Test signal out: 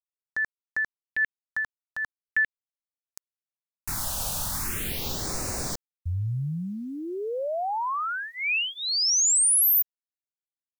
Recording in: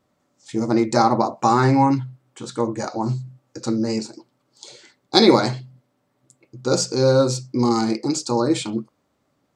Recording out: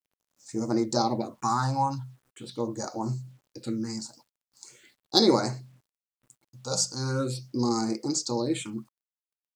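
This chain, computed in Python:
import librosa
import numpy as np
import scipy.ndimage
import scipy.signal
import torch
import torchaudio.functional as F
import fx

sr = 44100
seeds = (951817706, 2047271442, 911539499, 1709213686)

y = fx.high_shelf(x, sr, hz=3500.0, db=8.5)
y = fx.phaser_stages(y, sr, stages=4, low_hz=340.0, high_hz=3300.0, hz=0.41, feedback_pct=5)
y = fx.quant_dither(y, sr, seeds[0], bits=10, dither='none')
y = y * librosa.db_to_amplitude(-7.5)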